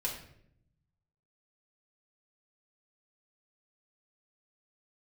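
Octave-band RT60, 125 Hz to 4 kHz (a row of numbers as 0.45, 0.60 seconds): 1.5, 1.2, 0.80, 0.55, 0.60, 0.50 seconds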